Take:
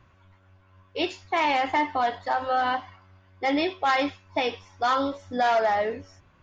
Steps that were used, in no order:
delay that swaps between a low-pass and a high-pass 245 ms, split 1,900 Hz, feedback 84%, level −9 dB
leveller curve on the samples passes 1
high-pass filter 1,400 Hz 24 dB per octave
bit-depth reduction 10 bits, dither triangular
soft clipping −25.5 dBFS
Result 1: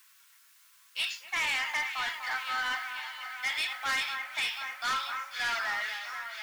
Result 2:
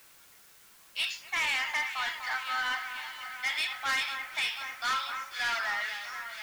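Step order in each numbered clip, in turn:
bit-depth reduction, then high-pass filter, then leveller curve on the samples, then delay that swaps between a low-pass and a high-pass, then soft clipping
high-pass filter, then soft clipping, then delay that swaps between a low-pass and a high-pass, then bit-depth reduction, then leveller curve on the samples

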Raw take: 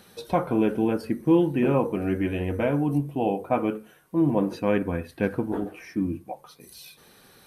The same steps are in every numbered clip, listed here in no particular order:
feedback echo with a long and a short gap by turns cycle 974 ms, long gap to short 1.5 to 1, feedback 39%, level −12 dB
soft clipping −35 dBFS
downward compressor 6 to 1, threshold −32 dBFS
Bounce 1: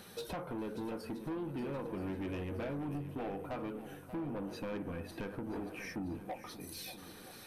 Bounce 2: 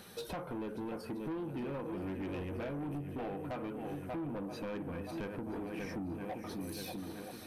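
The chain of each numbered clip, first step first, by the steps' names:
downward compressor, then soft clipping, then feedback echo with a long and a short gap by turns
feedback echo with a long and a short gap by turns, then downward compressor, then soft clipping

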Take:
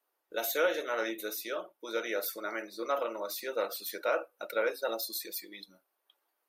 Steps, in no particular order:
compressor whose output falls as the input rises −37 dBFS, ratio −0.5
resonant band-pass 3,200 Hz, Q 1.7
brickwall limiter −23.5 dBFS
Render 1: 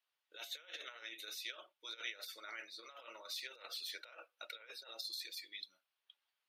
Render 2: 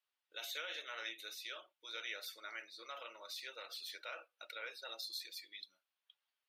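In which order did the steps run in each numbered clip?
brickwall limiter, then compressor whose output falls as the input rises, then resonant band-pass
brickwall limiter, then resonant band-pass, then compressor whose output falls as the input rises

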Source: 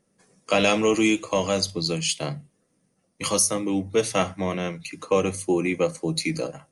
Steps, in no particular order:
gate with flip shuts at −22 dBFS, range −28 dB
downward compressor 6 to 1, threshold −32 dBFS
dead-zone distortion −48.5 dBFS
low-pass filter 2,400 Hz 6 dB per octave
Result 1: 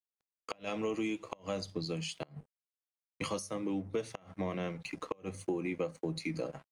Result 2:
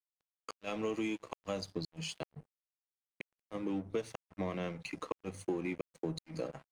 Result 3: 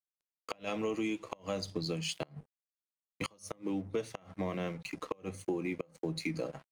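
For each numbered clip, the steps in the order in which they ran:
dead-zone distortion, then downward compressor, then low-pass filter, then gate with flip
downward compressor, then gate with flip, then dead-zone distortion, then low-pass filter
low-pass filter, then dead-zone distortion, then downward compressor, then gate with flip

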